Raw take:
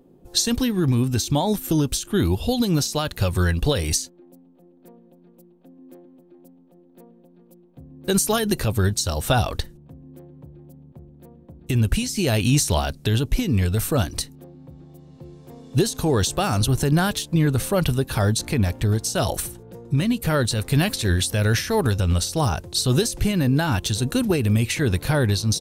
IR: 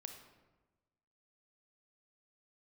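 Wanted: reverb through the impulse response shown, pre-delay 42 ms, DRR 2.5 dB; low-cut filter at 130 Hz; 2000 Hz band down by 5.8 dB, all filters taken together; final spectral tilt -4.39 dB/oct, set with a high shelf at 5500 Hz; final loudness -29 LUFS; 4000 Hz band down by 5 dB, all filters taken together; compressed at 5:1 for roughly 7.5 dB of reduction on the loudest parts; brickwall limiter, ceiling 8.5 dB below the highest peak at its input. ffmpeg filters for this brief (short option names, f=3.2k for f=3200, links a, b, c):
-filter_complex "[0:a]highpass=130,equalizer=f=2k:t=o:g=-7.5,equalizer=f=4k:t=o:g=-7.5,highshelf=f=5.5k:g=7.5,acompressor=threshold=-24dB:ratio=5,alimiter=limit=-20.5dB:level=0:latency=1,asplit=2[a][b];[1:a]atrim=start_sample=2205,adelay=42[c];[b][c]afir=irnorm=-1:irlink=0,volume=2dB[d];[a][d]amix=inputs=2:normalize=0,volume=-0.5dB"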